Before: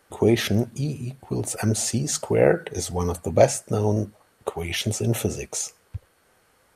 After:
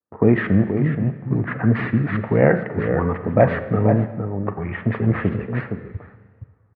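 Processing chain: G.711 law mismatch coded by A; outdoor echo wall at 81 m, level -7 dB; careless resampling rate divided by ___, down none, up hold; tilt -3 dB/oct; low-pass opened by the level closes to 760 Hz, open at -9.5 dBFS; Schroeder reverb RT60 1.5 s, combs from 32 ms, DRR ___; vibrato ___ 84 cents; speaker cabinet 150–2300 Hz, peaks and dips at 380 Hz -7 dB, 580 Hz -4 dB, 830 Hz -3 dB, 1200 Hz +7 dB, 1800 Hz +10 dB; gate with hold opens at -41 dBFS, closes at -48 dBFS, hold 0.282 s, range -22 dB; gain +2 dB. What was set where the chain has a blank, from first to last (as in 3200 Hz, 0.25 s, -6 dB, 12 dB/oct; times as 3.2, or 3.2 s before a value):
4×, 11 dB, 1.3 Hz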